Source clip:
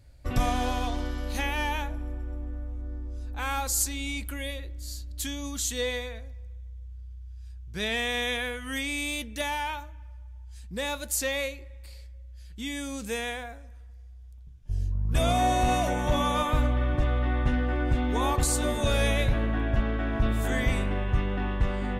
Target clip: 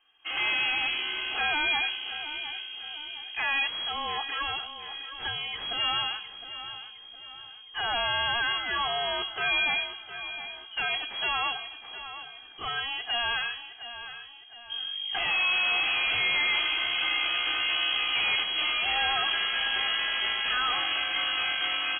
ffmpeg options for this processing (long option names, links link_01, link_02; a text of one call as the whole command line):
ffmpeg -i in.wav -af "highpass=frequency=660:poles=1,aecho=1:1:2.4:0.89,dynaudnorm=framelen=100:gausssize=5:maxgain=8dB,aeval=exprs='(tanh(22.4*val(0)+0.5)-tanh(0.5))/22.4':channel_layout=same,aecho=1:1:712|1424|2136|2848|3560:0.251|0.113|0.0509|0.0229|0.0103,lowpass=frequency=2800:width_type=q:width=0.5098,lowpass=frequency=2800:width_type=q:width=0.6013,lowpass=frequency=2800:width_type=q:width=0.9,lowpass=frequency=2800:width_type=q:width=2.563,afreqshift=-3300,volume=2dB" out.wav